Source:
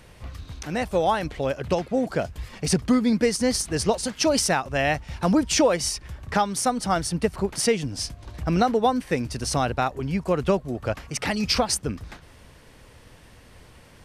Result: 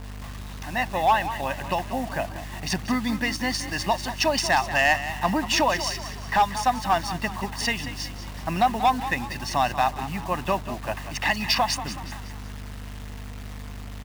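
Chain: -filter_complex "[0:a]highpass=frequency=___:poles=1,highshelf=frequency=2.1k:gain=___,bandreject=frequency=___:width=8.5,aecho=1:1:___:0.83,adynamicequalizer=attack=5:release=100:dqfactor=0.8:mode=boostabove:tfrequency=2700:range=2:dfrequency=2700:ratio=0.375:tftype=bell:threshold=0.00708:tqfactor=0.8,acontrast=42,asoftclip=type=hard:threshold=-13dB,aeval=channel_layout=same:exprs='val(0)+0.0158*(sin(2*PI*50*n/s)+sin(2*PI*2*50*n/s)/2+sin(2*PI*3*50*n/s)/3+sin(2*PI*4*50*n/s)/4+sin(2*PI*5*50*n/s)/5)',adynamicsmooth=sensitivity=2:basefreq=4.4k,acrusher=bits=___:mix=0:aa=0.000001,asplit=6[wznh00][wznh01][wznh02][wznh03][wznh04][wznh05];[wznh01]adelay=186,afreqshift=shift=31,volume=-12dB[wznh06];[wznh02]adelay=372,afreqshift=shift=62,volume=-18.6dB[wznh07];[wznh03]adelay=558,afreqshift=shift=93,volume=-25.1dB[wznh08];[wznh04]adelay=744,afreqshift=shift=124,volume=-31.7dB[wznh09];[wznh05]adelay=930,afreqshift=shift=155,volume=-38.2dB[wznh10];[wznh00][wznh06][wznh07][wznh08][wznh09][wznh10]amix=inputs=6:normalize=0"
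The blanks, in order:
1.1k, -10, 8k, 1.1, 6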